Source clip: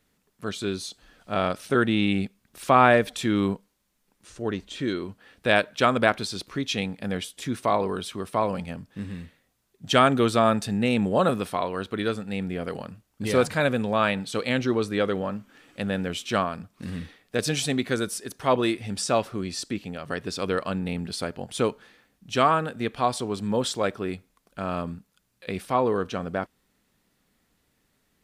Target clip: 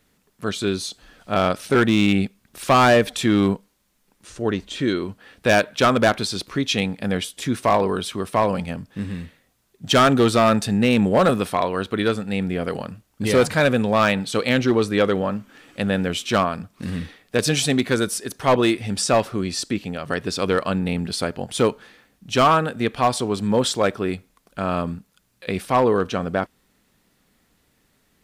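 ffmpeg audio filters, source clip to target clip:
ffmpeg -i in.wav -af "asoftclip=type=hard:threshold=-16dB,volume=6dB" out.wav

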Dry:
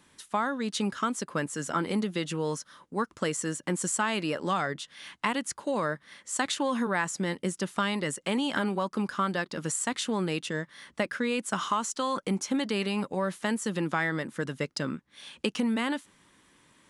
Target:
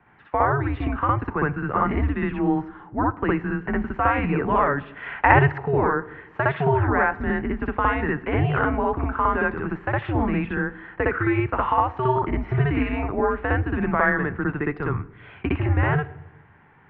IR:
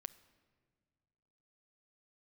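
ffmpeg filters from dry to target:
-filter_complex "[0:a]asettb=1/sr,asplit=3[link_01][link_02][link_03];[link_01]atrim=end=4.964[link_04];[link_02]atrim=start=4.96:end=5.52,asetpts=PTS-STARTPTS,afade=type=in:duration=0.004:curve=qsin,afade=type=out:start_time=0.556:duration=0.004:curve=qsin,acontrast=64[link_05];[link_03]atrim=start=5.516[link_06];[link_04][link_05]acrossfade=duration=0.004:curve1=hsin:curve2=qsin[link_07];[link_07][link_06]acrossfade=duration=0.004:curve1=qsin:curve2=hsin,asplit=2[link_08][link_09];[1:a]atrim=start_sample=2205,asetrate=74970,aresample=44100,adelay=61[link_10];[link_09][link_10]afir=irnorm=-1:irlink=0,volume=11.5dB[link_11];[link_08][link_11]amix=inputs=2:normalize=0,highpass=frequency=230:width_type=q:width=0.5412,highpass=frequency=230:width_type=q:width=1.307,lowpass=frequency=2300:width_type=q:width=0.5176,lowpass=frequency=2300:width_type=q:width=0.7071,lowpass=frequency=2300:width_type=q:width=1.932,afreqshift=-140,volume=5dB"

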